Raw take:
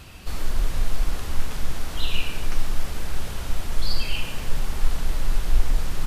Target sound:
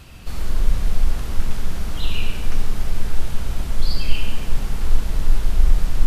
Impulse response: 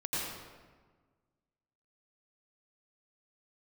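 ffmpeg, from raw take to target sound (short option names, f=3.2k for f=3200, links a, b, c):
-filter_complex "[0:a]asplit=2[a][b];[1:a]atrim=start_sample=2205,asetrate=57330,aresample=44100,lowshelf=f=410:g=11[c];[b][c]afir=irnorm=-1:irlink=0,volume=-9.5dB[d];[a][d]amix=inputs=2:normalize=0,volume=-2.5dB"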